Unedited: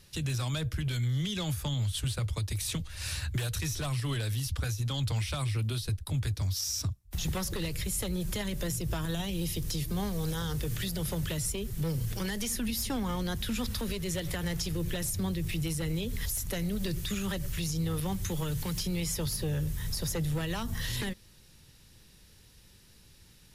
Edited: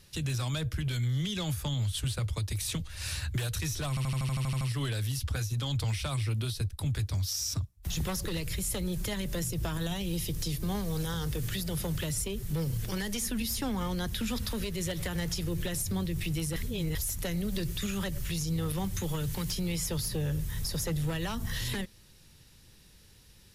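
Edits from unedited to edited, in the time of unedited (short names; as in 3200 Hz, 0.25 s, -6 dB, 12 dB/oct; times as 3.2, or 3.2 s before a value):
3.89 stutter 0.08 s, 10 plays
15.84–16.23 reverse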